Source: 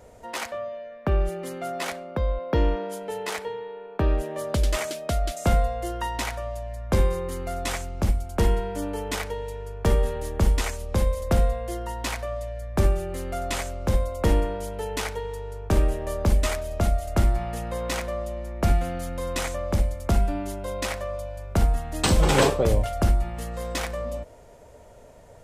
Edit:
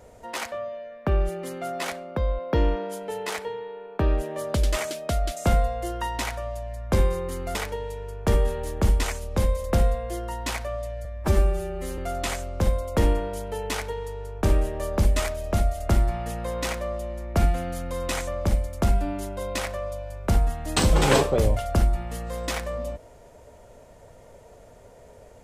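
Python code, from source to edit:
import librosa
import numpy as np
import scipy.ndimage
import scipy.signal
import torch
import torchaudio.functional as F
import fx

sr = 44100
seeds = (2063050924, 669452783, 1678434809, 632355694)

y = fx.edit(x, sr, fx.cut(start_s=7.55, length_s=1.58),
    fx.stretch_span(start_s=12.63, length_s=0.62, factor=1.5), tone=tone)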